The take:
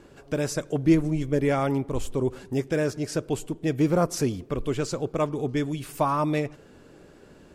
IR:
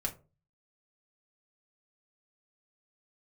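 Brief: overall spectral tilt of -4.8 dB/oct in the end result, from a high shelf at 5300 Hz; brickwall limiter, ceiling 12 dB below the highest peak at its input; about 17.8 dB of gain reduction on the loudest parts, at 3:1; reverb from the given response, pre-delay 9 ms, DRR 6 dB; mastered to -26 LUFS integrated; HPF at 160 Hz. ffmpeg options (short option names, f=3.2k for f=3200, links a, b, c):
-filter_complex "[0:a]highpass=160,highshelf=f=5.3k:g=5.5,acompressor=threshold=-40dB:ratio=3,alimiter=level_in=10.5dB:limit=-24dB:level=0:latency=1,volume=-10.5dB,asplit=2[a][b];[1:a]atrim=start_sample=2205,adelay=9[c];[b][c]afir=irnorm=-1:irlink=0,volume=-8.5dB[d];[a][d]amix=inputs=2:normalize=0,volume=18dB"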